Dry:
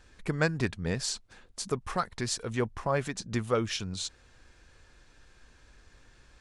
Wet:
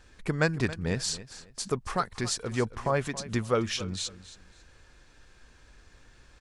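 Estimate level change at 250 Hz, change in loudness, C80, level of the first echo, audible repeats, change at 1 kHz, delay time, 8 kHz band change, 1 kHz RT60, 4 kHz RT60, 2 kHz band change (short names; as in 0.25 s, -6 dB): +1.5 dB, +1.5 dB, none, -16.0 dB, 2, +1.5 dB, 0.275 s, +1.5 dB, none, none, +1.5 dB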